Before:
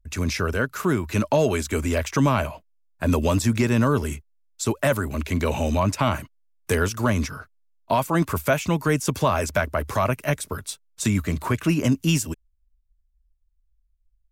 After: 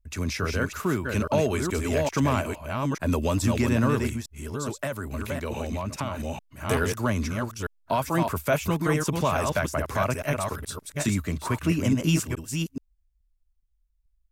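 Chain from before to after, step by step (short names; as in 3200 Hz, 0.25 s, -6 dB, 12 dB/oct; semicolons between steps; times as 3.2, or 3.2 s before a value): reverse delay 0.426 s, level -4 dB; 4.07–6.2 compressor, threshold -23 dBFS, peak gain reduction 8.5 dB; gain -4 dB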